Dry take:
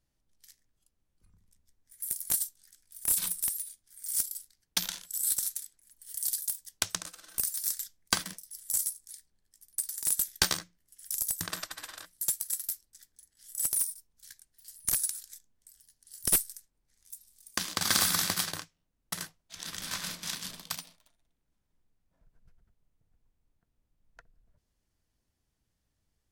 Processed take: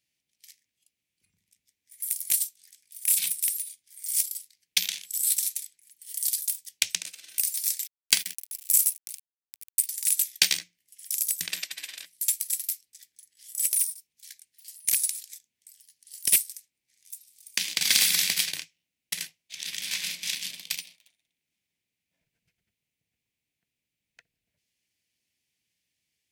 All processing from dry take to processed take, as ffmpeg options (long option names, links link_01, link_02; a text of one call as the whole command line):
ffmpeg -i in.wav -filter_complex "[0:a]asettb=1/sr,asplit=3[link_01][link_02][link_03];[link_01]atrim=end=7.834[link_04];[link_02]atrim=start=7.83:end=9.87,asetpts=PTS-STARTPTS,afade=type=in:duration=0.004:curve=qsin,afade=type=out:start_time=2.036:duration=0.004:curve=qsin,aeval=exprs='sgn(val(0))*max(abs(val(0))-0.00447,0)':channel_layout=same,highshelf=frequency=10000:gain=10,acompressor=mode=upward:threshold=-34dB:ratio=2.5:attack=3.2:release=140:knee=2.83:detection=peak[link_05];[link_03]atrim=start=9.866[link_06];[link_04][link_05]acrossfade=duration=0.004:curve1=hsin:curve2=qsin[link_07];[link_07][link_06]acrossfade=duration=0.004:curve1=qsin:curve2=hsin,highpass=130,highshelf=frequency=1700:width_type=q:width=3:gain=10.5,volume=-6.5dB" out.wav